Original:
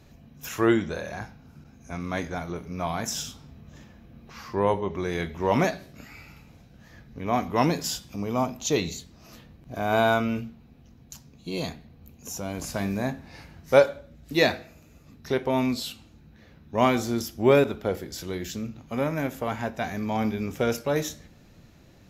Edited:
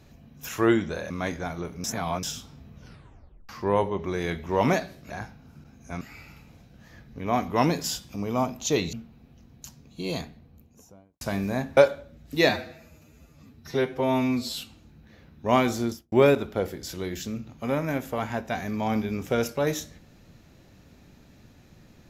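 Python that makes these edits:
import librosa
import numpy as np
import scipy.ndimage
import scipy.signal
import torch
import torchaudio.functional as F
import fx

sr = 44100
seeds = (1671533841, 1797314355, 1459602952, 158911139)

y = fx.studio_fade_out(x, sr, start_s=11.63, length_s=1.06)
y = fx.studio_fade_out(y, sr, start_s=17.11, length_s=0.3)
y = fx.edit(y, sr, fx.move(start_s=1.1, length_s=0.91, to_s=6.01),
    fx.reverse_span(start_s=2.75, length_s=0.39),
    fx.tape_stop(start_s=3.66, length_s=0.74),
    fx.cut(start_s=8.93, length_s=1.48),
    fx.cut(start_s=13.25, length_s=0.5),
    fx.stretch_span(start_s=14.47, length_s=1.38, factor=1.5), tone=tone)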